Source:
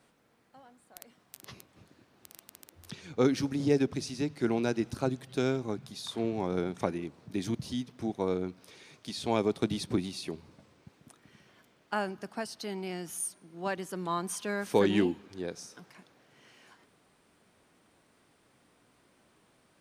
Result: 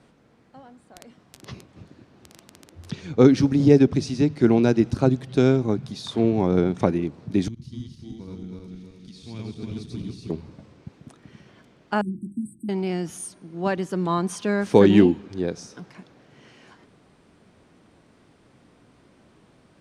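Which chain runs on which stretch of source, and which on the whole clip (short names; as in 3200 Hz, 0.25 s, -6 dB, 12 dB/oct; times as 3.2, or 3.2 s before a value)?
7.48–10.3 regenerating reverse delay 0.159 s, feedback 67%, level -0.5 dB + passive tone stack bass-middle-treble 6-0-2 + echo 88 ms -12.5 dB
12.01–12.69 brick-wall FIR band-stop 360–7700 Hz + notches 50/100/150/200/250/300/350/400/450/500 Hz
whole clip: LPF 7500 Hz 12 dB/oct; low shelf 460 Hz +9.5 dB; gain +5 dB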